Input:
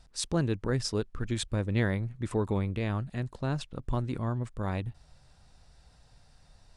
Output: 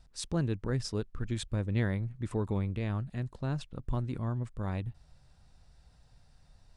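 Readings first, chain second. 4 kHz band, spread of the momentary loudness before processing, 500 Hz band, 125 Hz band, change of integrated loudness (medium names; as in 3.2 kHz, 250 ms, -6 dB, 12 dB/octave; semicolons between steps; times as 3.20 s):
-5.5 dB, 5 LU, -4.5 dB, -1.0 dB, -2.5 dB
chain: tone controls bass +4 dB, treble -1 dB; trim -5 dB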